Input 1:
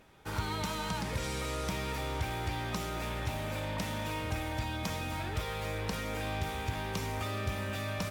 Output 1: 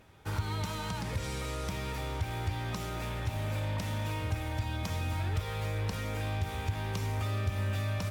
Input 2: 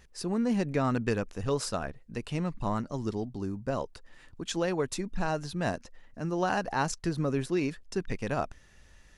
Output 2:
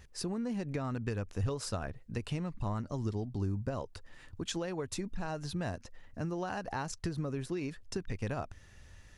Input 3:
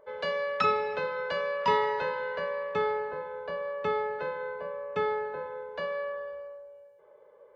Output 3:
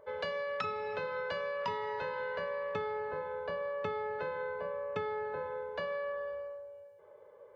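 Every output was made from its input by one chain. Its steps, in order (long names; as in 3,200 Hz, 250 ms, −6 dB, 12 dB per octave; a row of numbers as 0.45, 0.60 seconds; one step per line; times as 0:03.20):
downward compressor 10 to 1, threshold −33 dBFS
parametric band 94 Hz +10.5 dB 0.68 octaves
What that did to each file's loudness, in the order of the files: +1.0, −5.5, −6.0 LU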